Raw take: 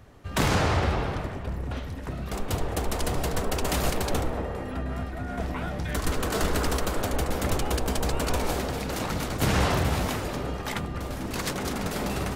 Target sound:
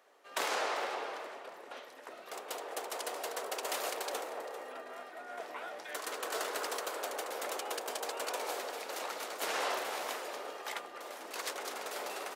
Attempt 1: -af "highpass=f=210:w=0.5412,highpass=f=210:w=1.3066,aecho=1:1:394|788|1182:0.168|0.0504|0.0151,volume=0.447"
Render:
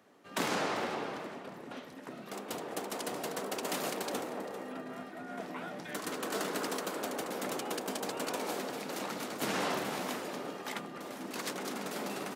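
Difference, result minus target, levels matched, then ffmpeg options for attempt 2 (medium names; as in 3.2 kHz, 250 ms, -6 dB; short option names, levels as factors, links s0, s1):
250 Hz band +12.5 dB
-af "highpass=f=440:w=0.5412,highpass=f=440:w=1.3066,aecho=1:1:394|788|1182:0.168|0.0504|0.0151,volume=0.447"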